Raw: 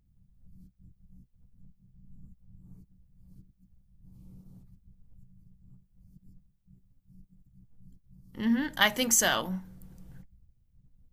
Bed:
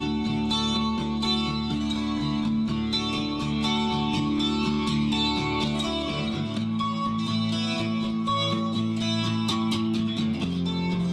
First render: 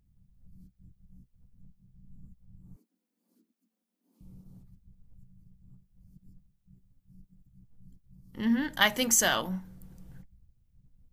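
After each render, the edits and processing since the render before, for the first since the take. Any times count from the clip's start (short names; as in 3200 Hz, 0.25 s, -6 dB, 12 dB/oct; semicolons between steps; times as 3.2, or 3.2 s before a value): 2.76–4.21 steep high-pass 220 Hz 96 dB/oct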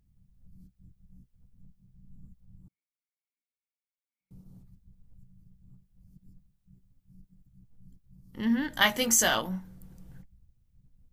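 2.68–4.31 band-pass 2200 Hz, Q 16; 8.7–9.39 doubler 18 ms -6.5 dB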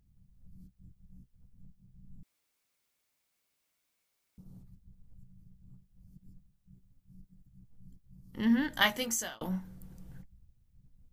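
2.23–4.38 room tone; 8.59–9.41 fade out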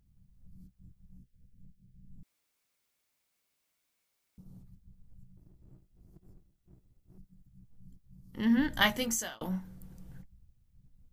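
1.18–2.18 Chebyshev band-stop 570–1600 Hz; 5.37–7.18 minimum comb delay 1.5 ms; 8.57–9.19 low shelf 180 Hz +10.5 dB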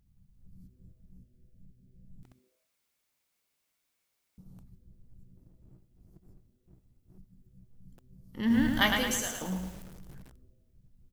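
frequency-shifting echo 82 ms, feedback 50%, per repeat -130 Hz, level -15 dB; lo-fi delay 0.109 s, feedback 55%, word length 8-bit, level -4.5 dB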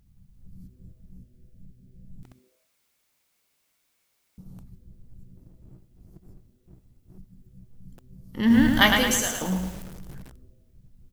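gain +7.5 dB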